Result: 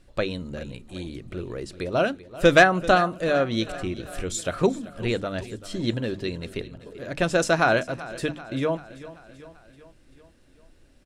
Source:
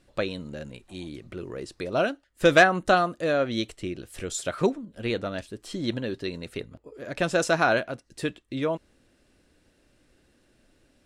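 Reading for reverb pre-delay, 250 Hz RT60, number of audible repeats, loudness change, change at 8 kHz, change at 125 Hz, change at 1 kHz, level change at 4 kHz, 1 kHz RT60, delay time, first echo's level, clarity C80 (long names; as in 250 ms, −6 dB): no reverb audible, no reverb audible, 4, +2.0 dB, +1.5 dB, +4.5 dB, +2.0 dB, +1.5 dB, no reverb audible, 387 ms, −17.0 dB, no reverb audible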